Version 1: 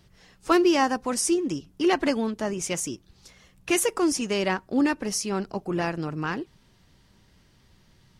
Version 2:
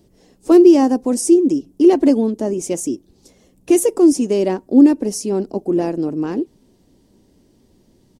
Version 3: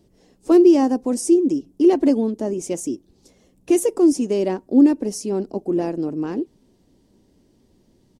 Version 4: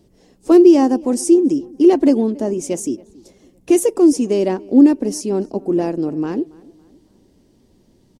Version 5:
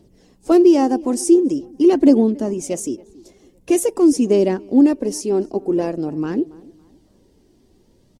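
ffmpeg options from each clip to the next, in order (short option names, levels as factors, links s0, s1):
-af "firequalizer=gain_entry='entry(150,0);entry(260,14);entry(1300,-9);entry(7700,4)':delay=0.05:min_phase=1"
-af "highshelf=f=9600:g=-4.5,volume=0.668"
-filter_complex "[0:a]asplit=2[s0][s1];[s1]adelay=279,lowpass=f=2700:p=1,volume=0.0708,asplit=2[s2][s3];[s3]adelay=279,lowpass=f=2700:p=1,volume=0.44,asplit=2[s4][s5];[s5]adelay=279,lowpass=f=2700:p=1,volume=0.44[s6];[s0][s2][s4][s6]amix=inputs=4:normalize=0,volume=1.5"
-af "aphaser=in_gain=1:out_gain=1:delay=3:decay=0.34:speed=0.46:type=triangular,volume=0.891"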